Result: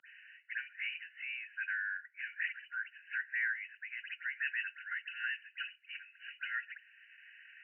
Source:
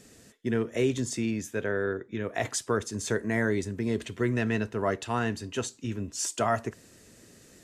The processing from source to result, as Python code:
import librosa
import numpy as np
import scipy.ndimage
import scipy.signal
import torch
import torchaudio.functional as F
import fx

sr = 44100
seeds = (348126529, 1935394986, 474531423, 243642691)

y = fx.spec_delay(x, sr, highs='late', ms=177)
y = fx.brickwall_bandpass(y, sr, low_hz=1400.0, high_hz=3000.0)
y = fx.band_squash(y, sr, depth_pct=40)
y = y * 10.0 ** (1.0 / 20.0)